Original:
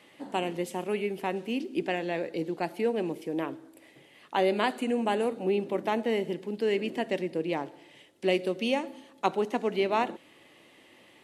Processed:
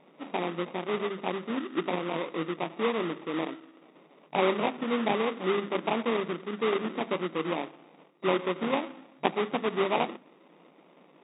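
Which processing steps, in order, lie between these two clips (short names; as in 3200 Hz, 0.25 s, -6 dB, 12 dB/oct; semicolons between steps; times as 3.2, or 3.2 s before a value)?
notches 50/100/150/200/250 Hz; sample-rate reducer 1600 Hz, jitter 20%; FFT band-pass 140–3800 Hz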